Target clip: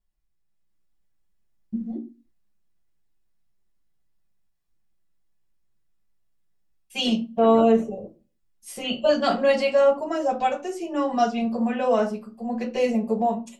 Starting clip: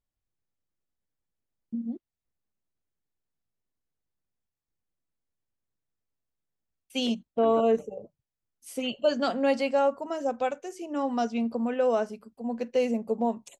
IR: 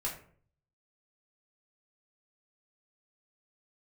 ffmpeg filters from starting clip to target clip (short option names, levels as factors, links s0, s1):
-filter_complex "[0:a]dynaudnorm=f=400:g=3:m=1.68[s0];[1:a]atrim=start_sample=2205,asetrate=88200,aresample=44100[s1];[s0][s1]afir=irnorm=-1:irlink=0,volume=1.78"